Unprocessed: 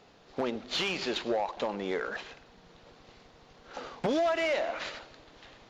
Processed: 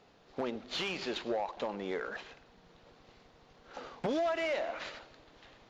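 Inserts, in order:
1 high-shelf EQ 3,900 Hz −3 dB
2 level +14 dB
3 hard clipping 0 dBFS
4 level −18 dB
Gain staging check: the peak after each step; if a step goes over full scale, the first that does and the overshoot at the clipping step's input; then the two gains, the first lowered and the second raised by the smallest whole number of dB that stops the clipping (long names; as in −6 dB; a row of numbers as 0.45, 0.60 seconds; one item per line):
−20.0, −6.0, −6.0, −24.0 dBFS
no step passes full scale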